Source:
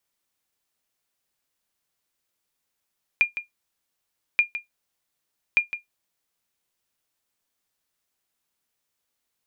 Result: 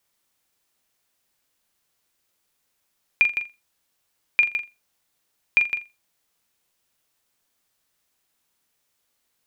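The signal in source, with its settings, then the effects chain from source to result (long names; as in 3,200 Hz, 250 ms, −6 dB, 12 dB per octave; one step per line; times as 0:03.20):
ping with an echo 2,410 Hz, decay 0.14 s, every 1.18 s, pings 3, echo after 0.16 s, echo −12 dB −9.5 dBFS
flutter between parallel walls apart 7.2 metres, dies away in 0.24 s
in parallel at 0 dB: brickwall limiter −21 dBFS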